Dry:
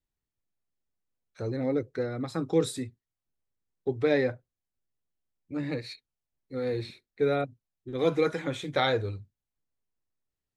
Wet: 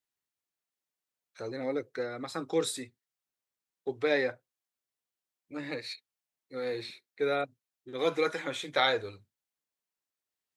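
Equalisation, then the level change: HPF 800 Hz 6 dB/oct; +2.5 dB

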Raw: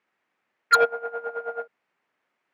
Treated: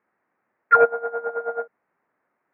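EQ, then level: LPF 2000 Hz 24 dB/oct; air absorption 430 m; +6.0 dB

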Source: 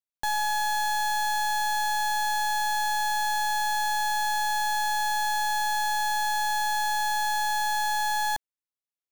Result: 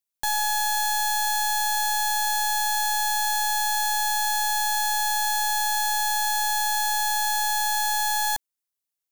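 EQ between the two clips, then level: high shelf 4700 Hz +10.5 dB; 0.0 dB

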